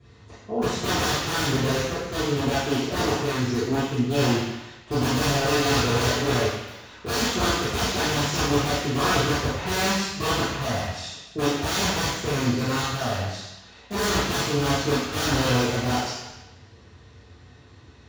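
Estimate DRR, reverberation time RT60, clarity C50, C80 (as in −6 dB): −13.0 dB, 1.0 s, −1.5 dB, 2.5 dB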